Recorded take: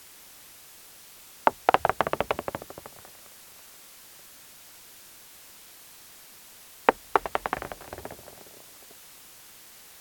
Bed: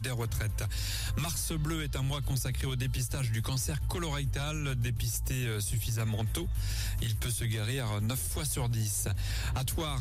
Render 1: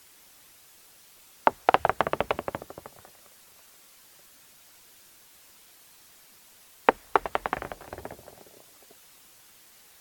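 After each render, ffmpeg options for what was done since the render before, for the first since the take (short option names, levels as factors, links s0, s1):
-af "afftdn=nr=6:nf=-50"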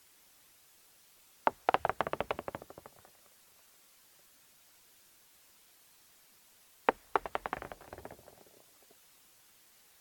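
-af "volume=0.398"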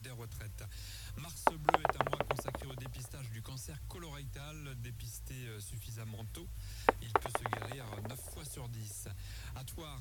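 -filter_complex "[1:a]volume=0.211[s0];[0:a][s0]amix=inputs=2:normalize=0"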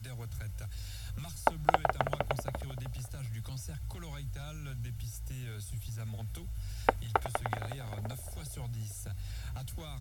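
-af "lowshelf=f=380:g=4,aecho=1:1:1.4:0.41"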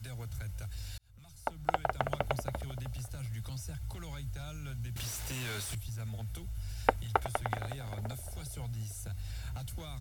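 -filter_complex "[0:a]asettb=1/sr,asplit=3[s0][s1][s2];[s0]atrim=end=4.964[s3];[s1]atrim=start=4.96:end=5.75,asetpts=PTS-STARTPTS,afade=t=in:d=0.004:c=qsin,afade=t=out:st=0.786:d=0.004:c=qsin,asplit=2[s4][s5];[s5]highpass=f=720:p=1,volume=31.6,asoftclip=type=tanh:threshold=0.0299[s6];[s4][s6]amix=inputs=2:normalize=0,lowpass=f=6600:p=1,volume=0.501[s7];[s2]atrim=start=5.746[s8];[s3][s7]acrossfade=d=0.004:c1=hsin:c2=qsin[s9];[s9][s8]acrossfade=d=0.004:c1=qsin:c2=hsin,asplit=2[s10][s11];[s10]atrim=end=0.98,asetpts=PTS-STARTPTS,afade=t=out:st=0.976:d=0.004:c=hsin[s12];[s11]atrim=start=0.98,asetpts=PTS-STARTPTS,afade=t=in:d=1.25[s13];[s12][s13]concat=n=2:v=0:a=1"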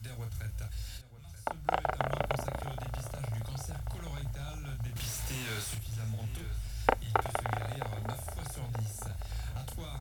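-filter_complex "[0:a]asplit=2[s0][s1];[s1]adelay=36,volume=0.531[s2];[s0][s2]amix=inputs=2:normalize=0,asplit=2[s3][s4];[s4]adelay=932,lowpass=f=3900:p=1,volume=0.224,asplit=2[s5][s6];[s6]adelay=932,lowpass=f=3900:p=1,volume=0.5,asplit=2[s7][s8];[s8]adelay=932,lowpass=f=3900:p=1,volume=0.5,asplit=2[s9][s10];[s10]adelay=932,lowpass=f=3900:p=1,volume=0.5,asplit=2[s11][s12];[s12]adelay=932,lowpass=f=3900:p=1,volume=0.5[s13];[s3][s5][s7][s9][s11][s13]amix=inputs=6:normalize=0"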